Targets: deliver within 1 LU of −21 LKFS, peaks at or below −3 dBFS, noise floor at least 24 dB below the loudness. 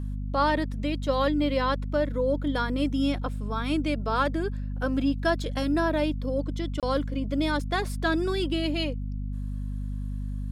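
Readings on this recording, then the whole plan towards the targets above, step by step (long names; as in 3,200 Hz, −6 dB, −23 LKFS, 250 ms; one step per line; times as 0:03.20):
number of dropouts 1; longest dropout 27 ms; mains hum 50 Hz; hum harmonics up to 250 Hz; level of the hum −29 dBFS; integrated loudness −28.0 LKFS; sample peak −12.0 dBFS; target loudness −21.0 LKFS
→ repair the gap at 0:06.80, 27 ms
hum removal 50 Hz, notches 5
level +7 dB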